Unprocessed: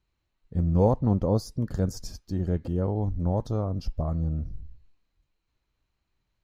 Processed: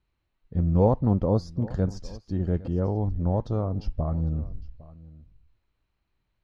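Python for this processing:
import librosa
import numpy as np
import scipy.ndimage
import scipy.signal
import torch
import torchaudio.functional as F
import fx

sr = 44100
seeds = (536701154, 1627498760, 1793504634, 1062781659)

p1 = scipy.signal.sosfilt(scipy.signal.butter(2, 3900.0, 'lowpass', fs=sr, output='sos'), x)
p2 = p1 + fx.echo_single(p1, sr, ms=807, db=-20.5, dry=0)
y = p2 * librosa.db_to_amplitude(1.0)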